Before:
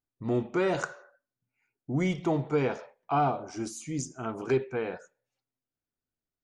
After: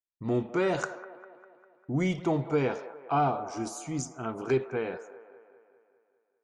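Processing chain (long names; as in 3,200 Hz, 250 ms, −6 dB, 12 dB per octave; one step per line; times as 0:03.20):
noise gate with hold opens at −51 dBFS
delay with a band-pass on its return 200 ms, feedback 57%, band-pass 840 Hz, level −13 dB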